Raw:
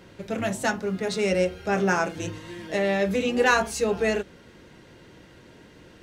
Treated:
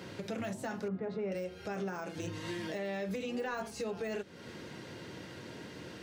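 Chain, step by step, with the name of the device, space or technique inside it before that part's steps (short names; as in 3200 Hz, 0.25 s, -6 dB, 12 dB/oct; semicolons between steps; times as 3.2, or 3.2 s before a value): 0.88–1.32 LPF 1200 Hz 12 dB/oct; broadcast voice chain (HPF 87 Hz 24 dB/oct; de-esser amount 90%; compressor 4:1, threshold -39 dBFS, peak gain reduction 17.5 dB; bell 4800 Hz +3.5 dB 0.48 oct; limiter -32.5 dBFS, peak gain reduction 5.5 dB); gain +3.5 dB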